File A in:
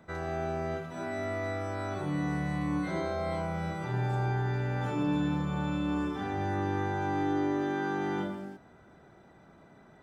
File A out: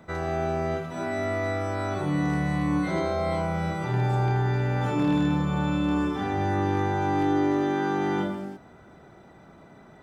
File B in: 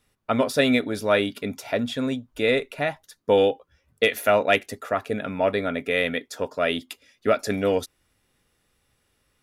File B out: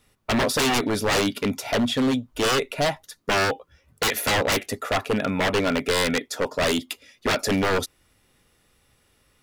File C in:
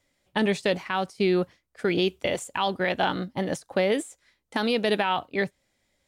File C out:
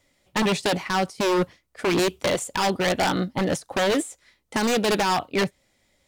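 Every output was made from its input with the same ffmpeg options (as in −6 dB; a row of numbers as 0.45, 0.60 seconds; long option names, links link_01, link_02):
-af "bandreject=frequency=1600:width=21,aeval=exprs='0.0794*(abs(mod(val(0)/0.0794+3,4)-2)-1)':channel_layout=same,volume=6dB"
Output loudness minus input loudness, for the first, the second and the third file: +6.0, +0.5, +2.5 LU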